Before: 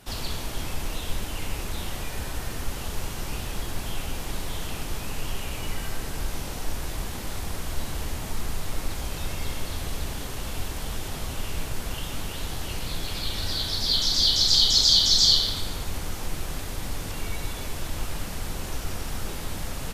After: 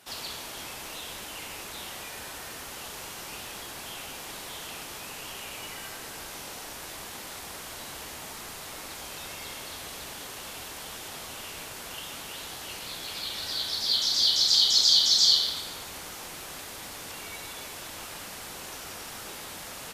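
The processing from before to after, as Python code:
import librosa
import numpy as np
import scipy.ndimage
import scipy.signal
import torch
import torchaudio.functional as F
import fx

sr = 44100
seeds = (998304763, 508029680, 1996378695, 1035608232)

y = fx.highpass(x, sr, hz=650.0, slope=6)
y = F.gain(torch.from_numpy(y), -1.5).numpy()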